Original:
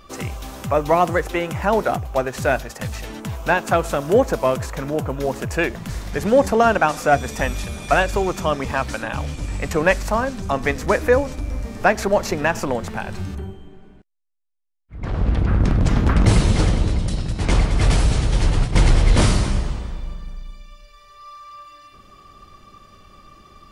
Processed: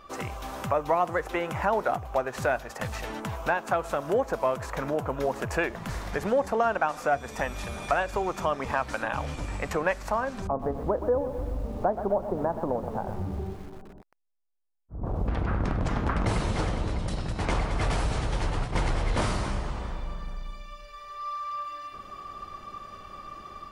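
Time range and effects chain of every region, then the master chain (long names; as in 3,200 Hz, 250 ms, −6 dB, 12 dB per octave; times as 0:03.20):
0:10.47–0:15.28: Gaussian smoothing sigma 9.5 samples + feedback echo at a low word length 124 ms, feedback 55%, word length 7 bits, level −12.5 dB
whole clip: automatic gain control gain up to 6.5 dB; parametric band 960 Hz +9.5 dB 2.5 octaves; downward compressor 2 to 1, threshold −20 dBFS; level −9 dB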